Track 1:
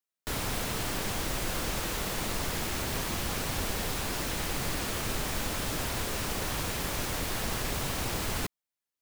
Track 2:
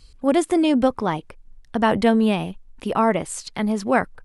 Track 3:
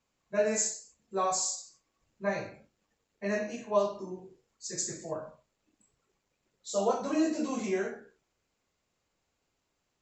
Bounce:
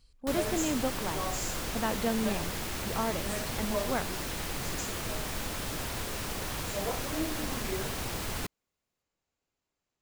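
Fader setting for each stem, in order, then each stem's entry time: -3.0 dB, -13.5 dB, -7.5 dB; 0.00 s, 0.00 s, 0.00 s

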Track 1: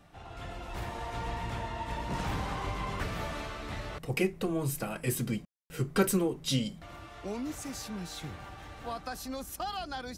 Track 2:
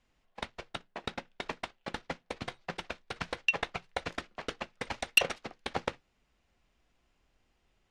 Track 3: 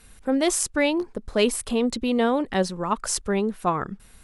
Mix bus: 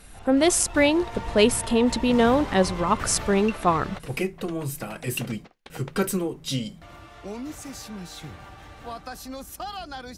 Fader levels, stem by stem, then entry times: +1.5 dB, -9.0 dB, +2.5 dB; 0.00 s, 0.00 s, 0.00 s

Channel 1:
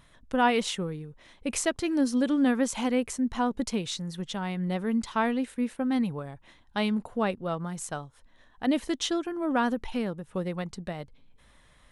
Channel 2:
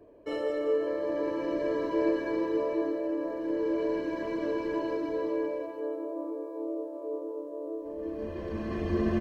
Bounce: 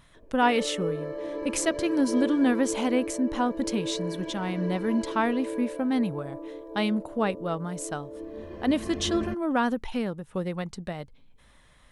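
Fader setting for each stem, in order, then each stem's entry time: +1.0 dB, -3.5 dB; 0.00 s, 0.15 s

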